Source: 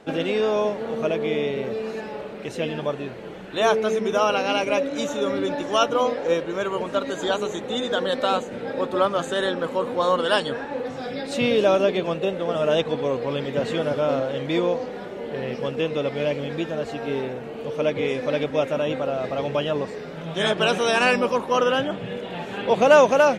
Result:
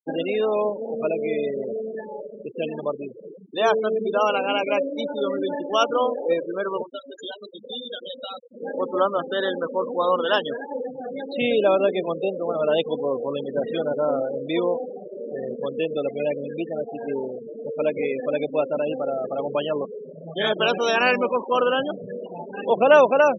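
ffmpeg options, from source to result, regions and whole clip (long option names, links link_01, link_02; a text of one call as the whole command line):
ffmpeg -i in.wav -filter_complex "[0:a]asettb=1/sr,asplit=3[link_01][link_02][link_03];[link_01]atrim=end=6.824[link_04];[link_02]atrim=start=6.82:end=8.6,asetpts=PTS-STARTPTS,afade=type=in:duration=0.004:curve=qsin,afade=type=out:start_time=1.776:duration=0.004:curve=qsin,highshelf=frequency=2300:gain=4.5,asplit=2[link_05][link_06];[link_06]adelay=25,volume=-7.5dB[link_07];[link_05][link_07]amix=inputs=2:normalize=0,atrim=end_sample=78498,acrossover=split=130|2600[link_08][link_09][link_10];[link_08]acompressor=threshold=-51dB:ratio=4[link_11];[link_09]acompressor=threshold=-35dB:ratio=4[link_12];[link_10]acompressor=threshold=-33dB:ratio=4[link_13];[link_11][link_12][link_13]amix=inputs=3:normalize=0[link_14];[link_03]atrim=start=8.596[link_15];[link_04][link_14]acrossfade=duration=0.004:curve1=hsin:curve2=qsin[link_16];[link_16][link_15]acrossfade=duration=0.004:curve1=qsin:curve2=hsin,afftfilt=real='re*gte(hypot(re,im),0.0708)':imag='im*gte(hypot(re,im),0.0708)':win_size=1024:overlap=0.75,highpass=220" out.wav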